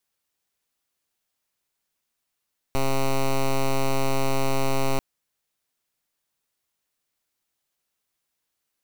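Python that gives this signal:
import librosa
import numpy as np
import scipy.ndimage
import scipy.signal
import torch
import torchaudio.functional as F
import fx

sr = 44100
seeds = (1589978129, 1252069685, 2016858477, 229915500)

y = fx.pulse(sr, length_s=2.24, hz=135.0, level_db=-21.0, duty_pct=8)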